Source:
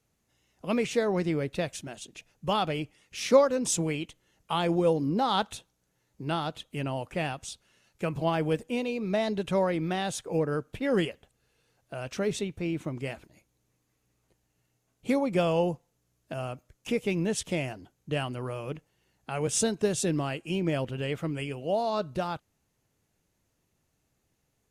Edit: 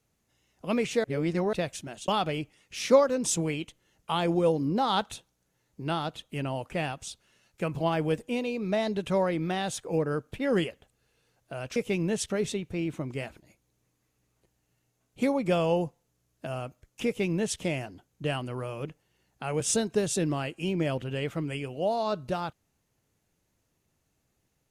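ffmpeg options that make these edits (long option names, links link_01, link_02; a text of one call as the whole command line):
ffmpeg -i in.wav -filter_complex "[0:a]asplit=6[link_01][link_02][link_03][link_04][link_05][link_06];[link_01]atrim=end=1.042[link_07];[link_02]atrim=start=1.038:end=1.532,asetpts=PTS-STARTPTS,areverse[link_08];[link_03]atrim=start=1.528:end=2.082[link_09];[link_04]atrim=start=2.488:end=12.172[link_10];[link_05]atrim=start=16.928:end=17.472[link_11];[link_06]atrim=start=12.168[link_12];[link_07][link_08]acrossfade=duration=0.004:curve1=hsin:curve2=hsin[link_13];[link_13][link_09]acrossfade=duration=0.004:curve1=hsin:curve2=hsin[link_14];[link_14][link_10]acrossfade=duration=0.004:curve1=hsin:curve2=hsin[link_15];[link_15][link_11]acrossfade=duration=0.004:curve1=hsin:curve2=hsin[link_16];[link_16][link_12]acrossfade=duration=0.004:curve1=hsin:curve2=hsin" out.wav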